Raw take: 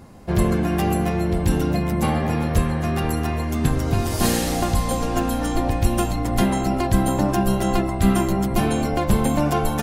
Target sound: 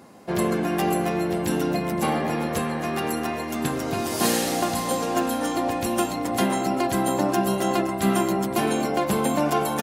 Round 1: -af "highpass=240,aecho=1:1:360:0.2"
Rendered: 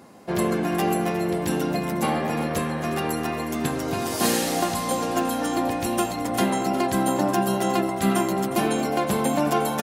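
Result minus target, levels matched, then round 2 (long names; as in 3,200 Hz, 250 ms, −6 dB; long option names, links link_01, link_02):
echo 159 ms early
-af "highpass=240,aecho=1:1:519:0.2"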